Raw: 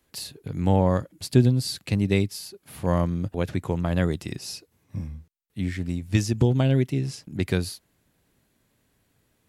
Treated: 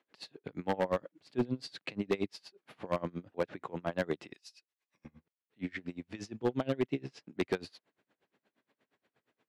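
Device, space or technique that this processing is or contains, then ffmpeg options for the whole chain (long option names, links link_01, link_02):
helicopter radio: -filter_complex "[0:a]highpass=310,lowpass=2900,aeval=exprs='val(0)*pow(10,-27*(0.5-0.5*cos(2*PI*8.5*n/s))/20)':channel_layout=same,asoftclip=type=hard:threshold=-24.5dB,asettb=1/sr,asplit=3[link_01][link_02][link_03];[link_01]atrim=end=4.334[link_04];[link_02]atrim=start=4.33:end=5.05,asetpts=PTS-STARTPTS,afade=type=in:duration=0.004:curve=qsin,afade=type=out:start_time=0.716:duration=0.004:curve=qsin,aderivative[link_05];[link_03]atrim=start=5.046[link_06];[link_04][link_05]acrossfade=duration=0.004:curve1=hsin:curve2=qsin[link_07];[link_07][link_06]acrossfade=duration=0.004:curve1=qsin:curve2=hsin,volume=2dB"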